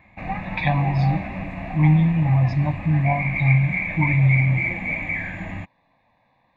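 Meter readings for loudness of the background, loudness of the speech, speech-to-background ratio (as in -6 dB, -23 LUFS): -27.0 LUFS, -20.5 LUFS, 6.5 dB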